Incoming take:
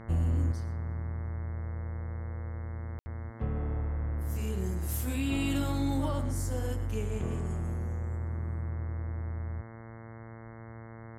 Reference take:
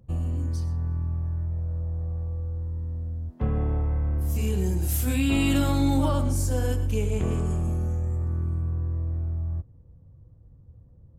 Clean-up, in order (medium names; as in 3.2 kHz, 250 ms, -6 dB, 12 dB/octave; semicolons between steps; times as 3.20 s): de-hum 113.4 Hz, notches 19; room tone fill 2.99–3.06 s; trim 0 dB, from 0.52 s +7.5 dB